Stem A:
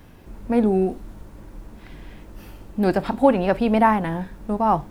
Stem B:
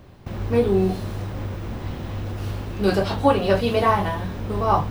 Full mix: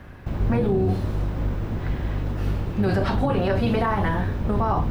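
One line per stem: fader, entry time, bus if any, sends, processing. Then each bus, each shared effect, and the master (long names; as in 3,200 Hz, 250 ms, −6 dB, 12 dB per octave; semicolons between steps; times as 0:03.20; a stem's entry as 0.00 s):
−1.5 dB, 0.00 s, no send, parametric band 1,600 Hz +12 dB 1.3 octaves; downward compressor, threshold −19 dBFS, peak gain reduction 12.5 dB
−0.5 dB, 0.00 s, polarity flipped, no send, sub-octave generator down 1 octave, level +3 dB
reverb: not used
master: high-shelf EQ 3,400 Hz −6.5 dB; brickwall limiter −13.5 dBFS, peak gain reduction 9.5 dB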